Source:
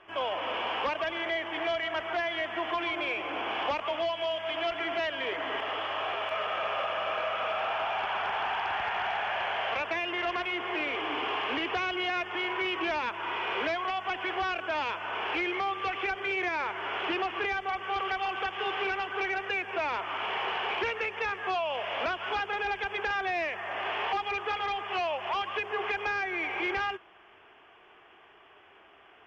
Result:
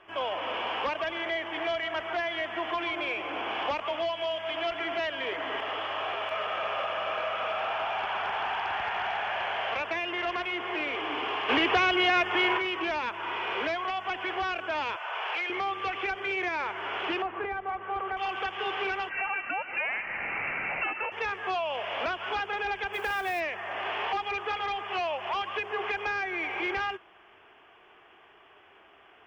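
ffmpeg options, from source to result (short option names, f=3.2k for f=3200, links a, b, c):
-filter_complex "[0:a]asplit=3[a][b][c];[a]afade=t=out:st=11.48:d=0.02[d];[b]acontrast=78,afade=t=in:st=11.48:d=0.02,afade=t=out:st=12.57:d=0.02[e];[c]afade=t=in:st=12.57:d=0.02[f];[d][e][f]amix=inputs=3:normalize=0,asettb=1/sr,asplit=3[g][h][i];[g]atrim=end=14.964[j];[h]atrim=start=14.96:end=15.5,asetpts=PTS-STARTPTS,afade=t=in:d=0.004:c=qsin,afade=t=out:st=0.536:d=0.004:c=qsin,highpass=f=520:w=0.5412,highpass=f=520:w=1.3066[k];[i]atrim=start=15.496[l];[j][k]acrossfade=d=0.004:c1=hsin:c2=qsin[m];[m][l]acrossfade=d=0.004:c1=qsin:c2=hsin,asettb=1/sr,asplit=3[n][o][p];[n]atrim=end=17.224[q];[o]atrim=start=17.22:end=18.17,asetpts=PTS-STARTPTS,afade=t=in:d=0.004:c=qsin,afade=t=out:st=0.946:d=0.004:c=qsin,lowpass=1.5k[r];[p]atrim=start=18.166[s];[q][r]acrossfade=d=0.004:c1=hsin:c2=qsin[t];[t][s]acrossfade=d=0.004:c1=qsin:c2=hsin,asettb=1/sr,asplit=3[u][v][w];[u]atrim=end=19.094[x];[v]atrim=start=19.09:end=21.12,asetpts=PTS-STARTPTS,afade=t=in:d=0.004:c=qsin,afade=t=out:st=2.026:d=0.004:c=qsin,lowpass=f=2.6k:t=q:w=0.5098,lowpass=f=2.6k:t=q:w=0.6013,lowpass=f=2.6k:t=q:w=0.9,lowpass=f=2.6k:t=q:w=2.563,afreqshift=-3100[y];[w]atrim=start=21.116[z];[x][y]acrossfade=d=0.004:c1=hsin:c2=qsin[aa];[aa][z]acrossfade=d=0.004:c1=qsin:c2=hsin,asplit=3[ab][ac][ad];[ab]afade=t=out:st=22.92:d=0.02[ae];[ac]acrusher=bits=5:mode=log:mix=0:aa=0.000001,afade=t=in:st=22.92:d=0.02,afade=t=out:st=23.39:d=0.02[af];[ad]afade=t=in:st=23.39:d=0.02[ag];[ae][af][ag]amix=inputs=3:normalize=0"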